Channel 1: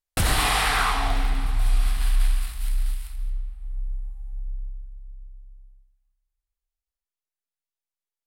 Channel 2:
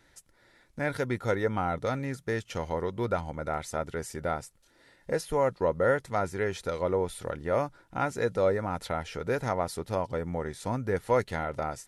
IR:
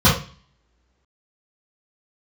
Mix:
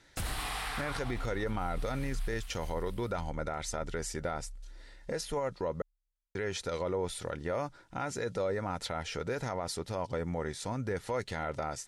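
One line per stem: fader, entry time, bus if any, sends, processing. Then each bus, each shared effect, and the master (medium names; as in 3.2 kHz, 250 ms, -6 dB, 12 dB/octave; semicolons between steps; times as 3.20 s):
-5.0 dB, 0.00 s, no send, auto duck -10 dB, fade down 0.30 s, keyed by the second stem
-0.5 dB, 0.00 s, muted 5.82–6.35 s, no send, treble shelf 4.2 kHz +10.5 dB; peak limiter -19.5 dBFS, peak gain reduction 6.5 dB; low-pass 6.6 kHz 12 dB/octave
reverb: none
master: peak limiter -24.5 dBFS, peak gain reduction 6.5 dB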